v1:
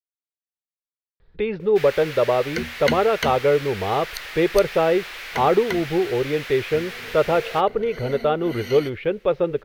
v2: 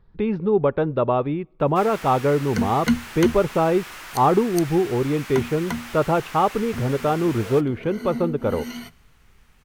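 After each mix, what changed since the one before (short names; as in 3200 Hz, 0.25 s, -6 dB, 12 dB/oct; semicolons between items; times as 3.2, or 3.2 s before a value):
speech: entry -1.20 s; master: add ten-band EQ 125 Hz +4 dB, 250 Hz +9 dB, 500 Hz -7 dB, 1000 Hz +6 dB, 2000 Hz -6 dB, 4000 Hz -6 dB, 8000 Hz +6 dB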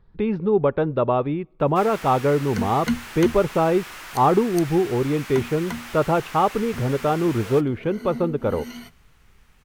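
second sound -3.5 dB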